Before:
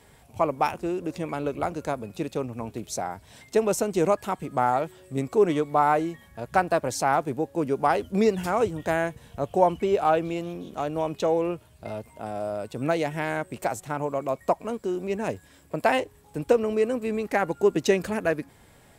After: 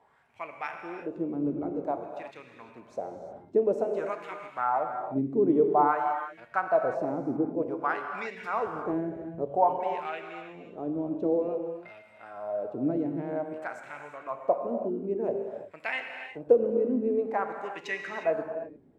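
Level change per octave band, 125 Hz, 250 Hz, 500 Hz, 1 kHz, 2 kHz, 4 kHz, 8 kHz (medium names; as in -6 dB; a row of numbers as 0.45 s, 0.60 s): -9.0 dB, -2.5 dB, -3.5 dB, -4.0 dB, -4.5 dB, under -10 dB, under -20 dB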